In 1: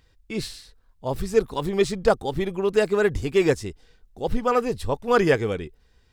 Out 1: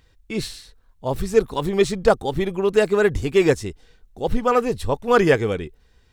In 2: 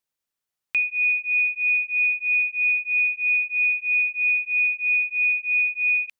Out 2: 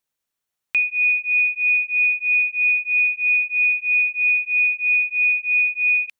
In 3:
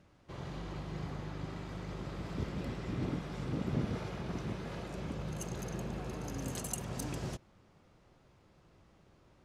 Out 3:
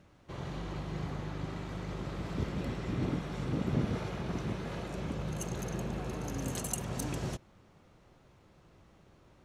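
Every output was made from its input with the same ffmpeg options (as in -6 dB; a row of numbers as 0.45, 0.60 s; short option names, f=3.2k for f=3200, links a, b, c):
-af "bandreject=f=4.9k:w=17,volume=3dB"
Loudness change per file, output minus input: +3.0, +3.0, +3.0 LU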